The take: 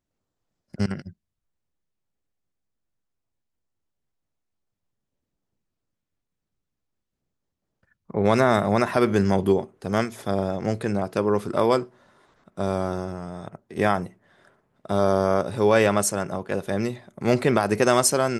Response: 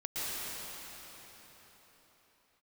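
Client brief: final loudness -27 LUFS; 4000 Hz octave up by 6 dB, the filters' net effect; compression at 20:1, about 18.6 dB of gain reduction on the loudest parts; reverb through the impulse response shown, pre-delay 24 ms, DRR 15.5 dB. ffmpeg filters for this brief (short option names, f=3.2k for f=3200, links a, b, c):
-filter_complex "[0:a]equalizer=f=4k:t=o:g=8,acompressor=threshold=-32dB:ratio=20,asplit=2[a][b];[1:a]atrim=start_sample=2205,adelay=24[c];[b][c]afir=irnorm=-1:irlink=0,volume=-21.5dB[d];[a][d]amix=inputs=2:normalize=0,volume=11.5dB"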